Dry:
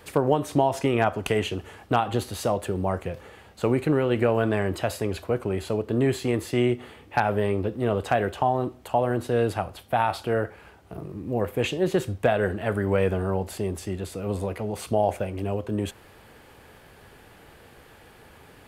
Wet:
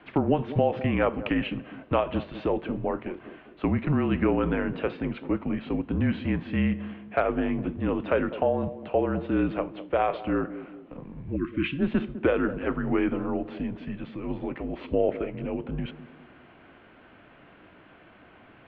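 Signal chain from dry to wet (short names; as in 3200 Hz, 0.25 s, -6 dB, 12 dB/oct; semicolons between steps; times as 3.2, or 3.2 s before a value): mistuned SSB -160 Hz 230–3300 Hz; spectral delete 11.36–11.79, 380–1000 Hz; narrowing echo 0.203 s, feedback 47%, band-pass 310 Hz, level -11.5 dB; gain -1 dB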